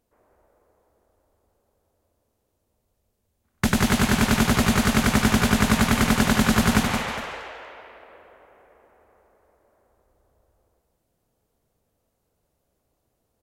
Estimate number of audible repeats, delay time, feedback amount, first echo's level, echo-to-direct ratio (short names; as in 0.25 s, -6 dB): 2, 0.169 s, no steady repeat, -5.5 dB, -5.0 dB